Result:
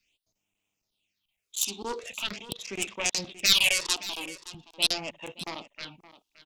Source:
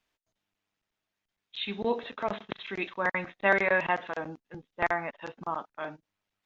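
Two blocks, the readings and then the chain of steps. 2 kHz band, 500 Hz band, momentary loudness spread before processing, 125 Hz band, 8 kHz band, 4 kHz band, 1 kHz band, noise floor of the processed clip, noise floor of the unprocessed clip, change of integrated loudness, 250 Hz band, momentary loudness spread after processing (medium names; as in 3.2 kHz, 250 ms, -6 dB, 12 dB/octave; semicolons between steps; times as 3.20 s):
-2.0 dB, -8.5 dB, 16 LU, -3.0 dB, no reading, +16.0 dB, -8.5 dB, -83 dBFS, under -85 dBFS, +4.0 dB, -4.5 dB, 20 LU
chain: self-modulated delay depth 0.9 ms; resonant high shelf 2.1 kHz +8 dB, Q 3; phase shifter stages 6, 0.43 Hz, lowest notch 140–4500 Hz; delay 570 ms -16 dB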